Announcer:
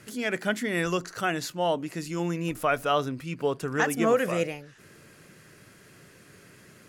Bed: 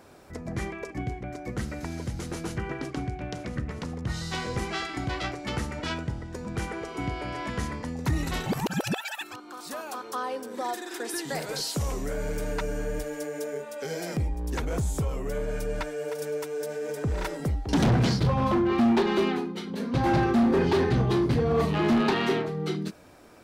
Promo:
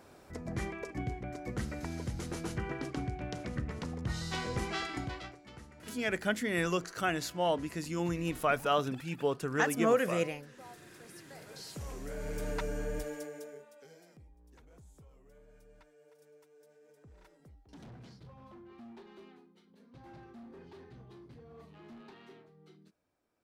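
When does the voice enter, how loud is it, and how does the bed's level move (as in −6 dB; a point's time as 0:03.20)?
5.80 s, −4.0 dB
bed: 0:04.96 −4.5 dB
0:05.45 −20.5 dB
0:11.28 −20.5 dB
0:12.47 −5.5 dB
0:13.09 −5.5 dB
0:14.21 −29.5 dB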